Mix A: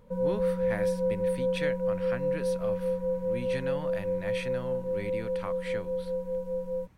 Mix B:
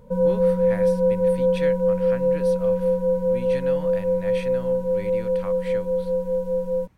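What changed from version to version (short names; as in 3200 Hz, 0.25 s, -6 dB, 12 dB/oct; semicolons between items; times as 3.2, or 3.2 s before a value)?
background +8.5 dB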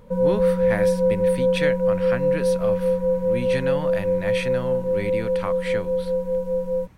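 speech +8.5 dB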